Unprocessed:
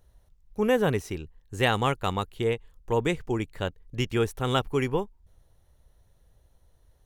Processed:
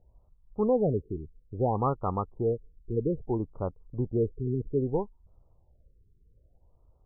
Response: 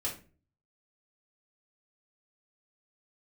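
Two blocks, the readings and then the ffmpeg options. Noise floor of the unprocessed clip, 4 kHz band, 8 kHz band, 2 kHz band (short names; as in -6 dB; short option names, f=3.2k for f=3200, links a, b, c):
-63 dBFS, under -40 dB, under -35 dB, under -30 dB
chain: -af "asuperstop=centerf=2700:order=20:qfactor=0.64,acontrast=81,afftfilt=real='re*lt(b*sr/1024,450*pow(1600/450,0.5+0.5*sin(2*PI*0.61*pts/sr)))':imag='im*lt(b*sr/1024,450*pow(1600/450,0.5+0.5*sin(2*PI*0.61*pts/sr)))':win_size=1024:overlap=0.75,volume=-8dB"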